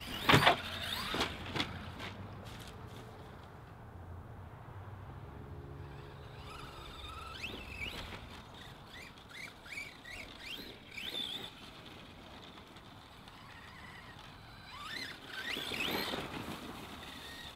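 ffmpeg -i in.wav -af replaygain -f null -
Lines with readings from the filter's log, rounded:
track_gain = +19.0 dB
track_peak = 0.201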